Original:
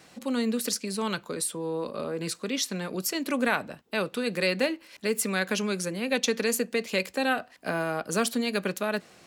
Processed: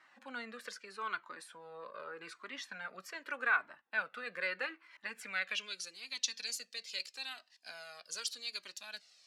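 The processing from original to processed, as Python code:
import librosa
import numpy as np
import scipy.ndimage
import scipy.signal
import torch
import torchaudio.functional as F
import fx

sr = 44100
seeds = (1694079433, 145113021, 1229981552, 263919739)

y = fx.filter_sweep_bandpass(x, sr, from_hz=1500.0, to_hz=4800.0, start_s=5.14, end_s=5.92, q=2.3)
y = fx.comb_cascade(y, sr, direction='falling', hz=0.81)
y = y * 10.0 ** (3.0 / 20.0)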